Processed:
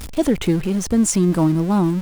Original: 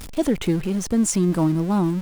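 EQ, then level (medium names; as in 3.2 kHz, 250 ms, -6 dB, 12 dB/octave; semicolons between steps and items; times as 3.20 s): peaking EQ 68 Hz +9 dB 0.22 oct; +3.0 dB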